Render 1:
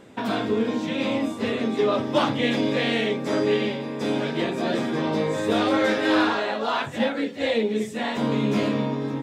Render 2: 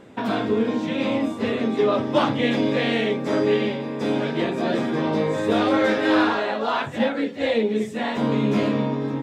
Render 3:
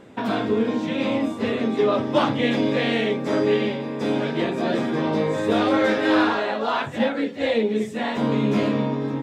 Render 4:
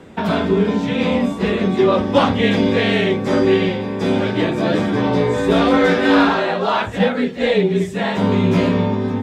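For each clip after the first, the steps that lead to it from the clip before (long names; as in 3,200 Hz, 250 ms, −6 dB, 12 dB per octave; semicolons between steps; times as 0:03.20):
high-shelf EQ 3,700 Hz −6.5 dB; level +2 dB
no processing that can be heard
frequency shifter −34 Hz; level +5.5 dB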